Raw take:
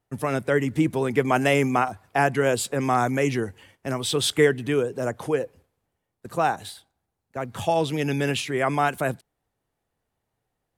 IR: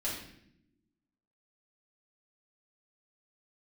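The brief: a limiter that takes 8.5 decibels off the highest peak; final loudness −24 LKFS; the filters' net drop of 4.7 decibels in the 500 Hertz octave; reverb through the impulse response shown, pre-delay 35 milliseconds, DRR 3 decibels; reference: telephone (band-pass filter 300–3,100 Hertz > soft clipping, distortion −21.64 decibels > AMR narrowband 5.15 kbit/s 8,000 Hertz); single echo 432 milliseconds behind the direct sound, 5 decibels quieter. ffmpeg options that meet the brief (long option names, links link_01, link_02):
-filter_complex "[0:a]equalizer=frequency=500:width_type=o:gain=-5,alimiter=limit=-17.5dB:level=0:latency=1,aecho=1:1:432:0.562,asplit=2[link_01][link_02];[1:a]atrim=start_sample=2205,adelay=35[link_03];[link_02][link_03]afir=irnorm=-1:irlink=0,volume=-7dB[link_04];[link_01][link_04]amix=inputs=2:normalize=0,highpass=300,lowpass=3100,asoftclip=threshold=-18dB,volume=8dB" -ar 8000 -c:a libopencore_amrnb -b:a 5150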